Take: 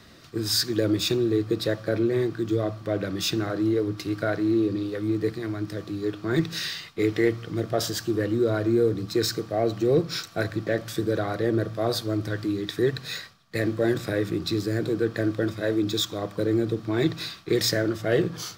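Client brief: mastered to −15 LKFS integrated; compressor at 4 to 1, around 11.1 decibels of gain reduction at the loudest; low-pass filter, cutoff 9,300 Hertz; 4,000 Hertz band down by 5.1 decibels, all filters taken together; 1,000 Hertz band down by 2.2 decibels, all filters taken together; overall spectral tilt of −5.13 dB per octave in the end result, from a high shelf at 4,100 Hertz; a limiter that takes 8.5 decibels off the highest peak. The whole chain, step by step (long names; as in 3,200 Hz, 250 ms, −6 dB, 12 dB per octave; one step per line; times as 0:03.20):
low-pass filter 9,300 Hz
parametric band 1,000 Hz −3.5 dB
parametric band 4,000 Hz −9 dB
high-shelf EQ 4,100 Hz +4.5 dB
downward compressor 4 to 1, threshold −32 dBFS
level +23 dB
brickwall limiter −5.5 dBFS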